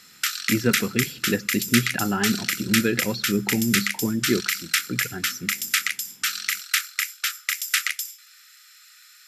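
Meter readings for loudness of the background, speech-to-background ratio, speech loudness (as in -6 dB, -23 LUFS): -25.0 LUFS, -1.5 dB, -26.5 LUFS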